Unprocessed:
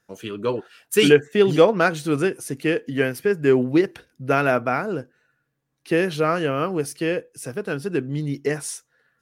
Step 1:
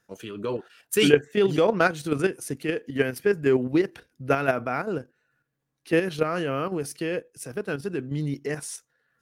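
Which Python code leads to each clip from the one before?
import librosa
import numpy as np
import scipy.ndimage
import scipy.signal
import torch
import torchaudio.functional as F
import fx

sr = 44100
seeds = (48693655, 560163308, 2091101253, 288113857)

y = fx.level_steps(x, sr, step_db=9)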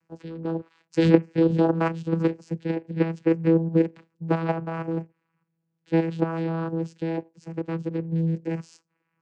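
y = fx.vocoder(x, sr, bands=8, carrier='saw', carrier_hz=164.0)
y = F.gain(torch.from_numpy(y), 1.5).numpy()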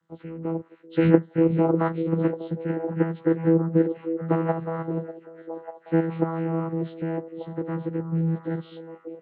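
y = fx.freq_compress(x, sr, knee_hz=1100.0, ratio=1.5)
y = fx.echo_stepped(y, sr, ms=594, hz=410.0, octaves=0.7, feedback_pct=70, wet_db=-7.5)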